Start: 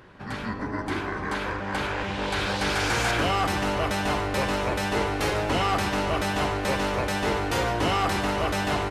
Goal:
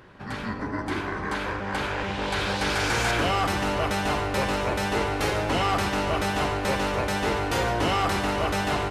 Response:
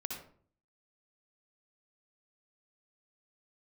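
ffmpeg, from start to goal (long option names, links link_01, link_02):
-filter_complex "[0:a]asplit=2[link_01][link_02];[1:a]atrim=start_sample=2205,asetrate=83790,aresample=44100,adelay=85[link_03];[link_02][link_03]afir=irnorm=-1:irlink=0,volume=-8.5dB[link_04];[link_01][link_04]amix=inputs=2:normalize=0"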